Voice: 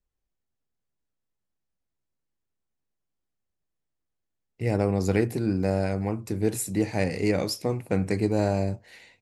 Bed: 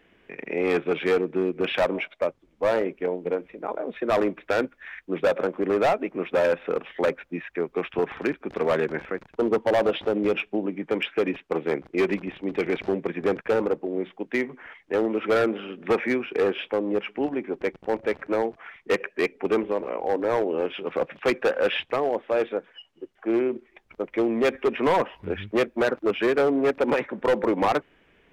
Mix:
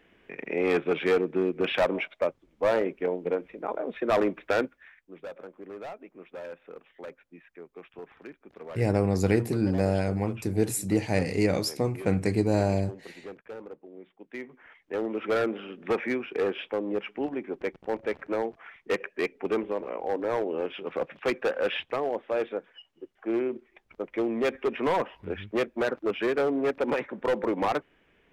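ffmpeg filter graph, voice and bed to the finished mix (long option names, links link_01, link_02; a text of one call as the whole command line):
ffmpeg -i stem1.wav -i stem2.wav -filter_complex "[0:a]adelay=4150,volume=0dB[link_01];[1:a]volume=12.5dB,afade=type=out:start_time=4.57:duration=0.38:silence=0.141254,afade=type=in:start_time=14.13:duration=1.2:silence=0.199526[link_02];[link_01][link_02]amix=inputs=2:normalize=0" out.wav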